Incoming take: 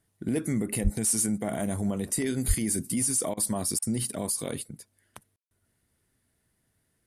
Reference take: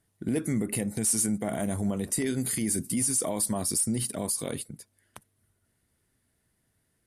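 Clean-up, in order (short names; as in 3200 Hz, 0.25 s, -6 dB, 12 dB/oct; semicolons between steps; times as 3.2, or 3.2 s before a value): de-plosive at 0.83/2.47; room tone fill 5.36–5.51; interpolate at 3.34/3.79, 31 ms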